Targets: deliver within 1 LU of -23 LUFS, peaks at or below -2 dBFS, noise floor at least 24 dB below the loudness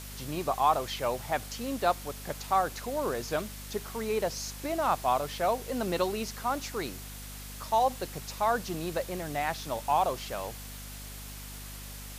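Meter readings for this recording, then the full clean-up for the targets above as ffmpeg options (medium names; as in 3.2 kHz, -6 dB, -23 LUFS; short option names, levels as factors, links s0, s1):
hum 50 Hz; highest harmonic 250 Hz; hum level -42 dBFS; noise floor -43 dBFS; noise floor target -55 dBFS; loudness -31.0 LUFS; peak level -12.0 dBFS; loudness target -23.0 LUFS
-> -af "bandreject=f=50:t=h:w=6,bandreject=f=100:t=h:w=6,bandreject=f=150:t=h:w=6,bandreject=f=200:t=h:w=6,bandreject=f=250:t=h:w=6"
-af "afftdn=nr=12:nf=-43"
-af "volume=2.51"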